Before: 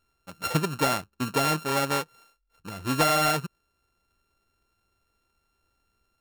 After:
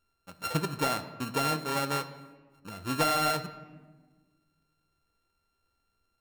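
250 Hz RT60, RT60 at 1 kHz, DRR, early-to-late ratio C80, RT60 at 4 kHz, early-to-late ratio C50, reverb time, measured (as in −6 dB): 2.1 s, 1.3 s, 9.5 dB, 14.0 dB, 0.85 s, 12.5 dB, 1.4 s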